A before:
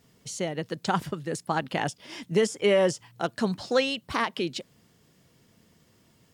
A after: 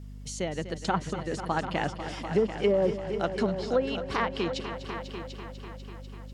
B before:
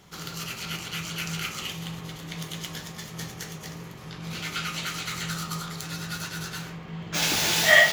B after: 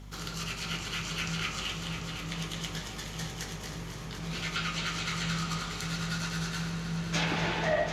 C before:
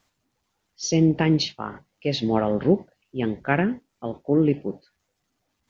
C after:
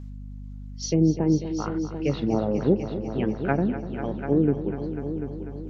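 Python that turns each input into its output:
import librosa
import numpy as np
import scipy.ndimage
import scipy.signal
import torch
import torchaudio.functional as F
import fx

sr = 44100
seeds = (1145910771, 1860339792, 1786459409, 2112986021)

y = fx.env_lowpass_down(x, sr, base_hz=630.0, full_db=-17.0)
y = fx.echo_heads(y, sr, ms=247, heads='all three', feedback_pct=51, wet_db=-13.0)
y = fx.add_hum(y, sr, base_hz=50, snr_db=12)
y = F.gain(torch.from_numpy(y), -1.5).numpy()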